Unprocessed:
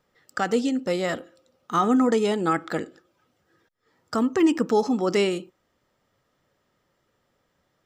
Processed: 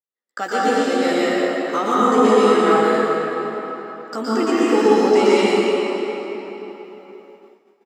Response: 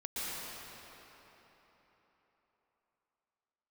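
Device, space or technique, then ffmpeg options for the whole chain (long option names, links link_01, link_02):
cathedral: -filter_complex "[1:a]atrim=start_sample=2205[link_01];[0:a][link_01]afir=irnorm=-1:irlink=0,agate=range=-33dB:threshold=-44dB:ratio=3:detection=peak,highpass=280,asplit=2[link_02][link_03];[link_03]adelay=14,volume=-6.5dB[link_04];[link_02][link_04]amix=inputs=2:normalize=0,volume=4dB"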